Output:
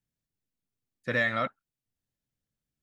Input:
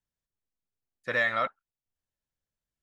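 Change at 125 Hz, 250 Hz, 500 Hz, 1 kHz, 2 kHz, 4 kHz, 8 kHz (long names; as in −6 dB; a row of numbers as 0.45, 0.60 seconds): +9.0 dB, +8.0 dB, +0.5 dB, −2.5 dB, −1.0 dB, 0.0 dB, can't be measured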